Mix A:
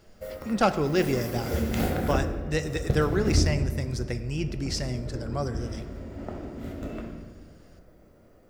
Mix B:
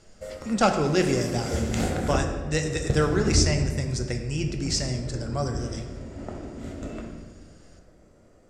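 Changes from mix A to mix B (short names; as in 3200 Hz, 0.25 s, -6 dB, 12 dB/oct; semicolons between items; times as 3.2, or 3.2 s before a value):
speech: send +7.0 dB; master: add synth low-pass 7700 Hz, resonance Q 2.8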